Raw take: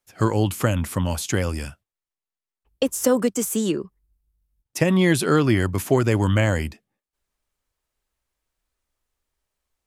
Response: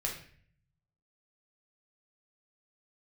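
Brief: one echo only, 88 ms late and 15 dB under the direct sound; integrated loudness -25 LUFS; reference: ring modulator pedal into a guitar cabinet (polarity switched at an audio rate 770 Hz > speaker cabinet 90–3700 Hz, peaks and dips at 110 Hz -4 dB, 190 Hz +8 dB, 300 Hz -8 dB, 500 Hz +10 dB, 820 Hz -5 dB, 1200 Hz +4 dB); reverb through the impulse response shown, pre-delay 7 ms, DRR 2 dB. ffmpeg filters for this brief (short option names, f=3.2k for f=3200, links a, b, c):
-filter_complex "[0:a]aecho=1:1:88:0.178,asplit=2[a][b];[1:a]atrim=start_sample=2205,adelay=7[c];[b][c]afir=irnorm=-1:irlink=0,volume=-5dB[d];[a][d]amix=inputs=2:normalize=0,aeval=exprs='val(0)*sgn(sin(2*PI*770*n/s))':c=same,highpass=90,equalizer=f=110:t=q:w=4:g=-4,equalizer=f=190:t=q:w=4:g=8,equalizer=f=300:t=q:w=4:g=-8,equalizer=f=500:t=q:w=4:g=10,equalizer=f=820:t=q:w=4:g=-5,equalizer=f=1.2k:t=q:w=4:g=4,lowpass=f=3.7k:w=0.5412,lowpass=f=3.7k:w=1.3066,volume=-7.5dB"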